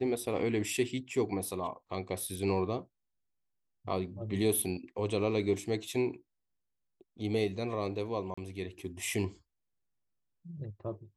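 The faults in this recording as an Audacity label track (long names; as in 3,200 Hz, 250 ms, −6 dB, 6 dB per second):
8.340000	8.380000	drop-out 35 ms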